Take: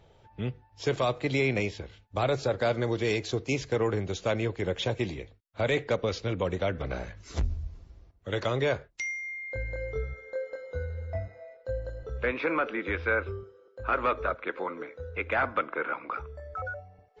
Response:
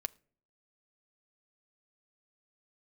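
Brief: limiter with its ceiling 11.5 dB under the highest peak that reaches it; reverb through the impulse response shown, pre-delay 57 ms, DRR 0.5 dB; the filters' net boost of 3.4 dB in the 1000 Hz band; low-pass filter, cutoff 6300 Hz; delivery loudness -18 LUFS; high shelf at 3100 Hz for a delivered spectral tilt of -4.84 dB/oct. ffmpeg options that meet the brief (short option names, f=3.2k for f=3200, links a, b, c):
-filter_complex "[0:a]lowpass=6.3k,equalizer=f=1k:t=o:g=5.5,highshelf=f=3.1k:g=-5,alimiter=level_in=1dB:limit=-24dB:level=0:latency=1,volume=-1dB,asplit=2[a][b];[1:a]atrim=start_sample=2205,adelay=57[c];[b][c]afir=irnorm=-1:irlink=0,volume=0.5dB[d];[a][d]amix=inputs=2:normalize=0,volume=15.5dB"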